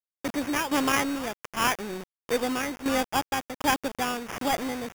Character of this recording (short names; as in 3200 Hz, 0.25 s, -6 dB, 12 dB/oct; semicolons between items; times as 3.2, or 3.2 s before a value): a quantiser's noise floor 6-bit, dither none; tremolo saw down 1.4 Hz, depth 70%; aliases and images of a low sample rate 4100 Hz, jitter 0%